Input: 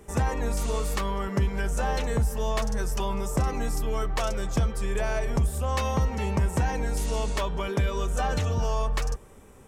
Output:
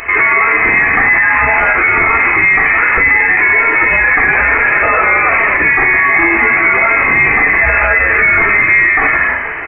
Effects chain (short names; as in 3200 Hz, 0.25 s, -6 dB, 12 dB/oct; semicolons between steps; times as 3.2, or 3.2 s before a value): HPF 770 Hz 24 dB/oct; in parallel at +2 dB: negative-ratio compressor -43 dBFS, ratio -1; on the sum: bit-crush 10-bit; on a send: frequency-shifting echo 0.159 s, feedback 49%, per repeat +99 Hz, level -8 dB; on the sum: shoebox room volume 630 m³, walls furnished, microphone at 4.2 m; inverted band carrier 3000 Hz; maximiser +22.5 dB; gain -1 dB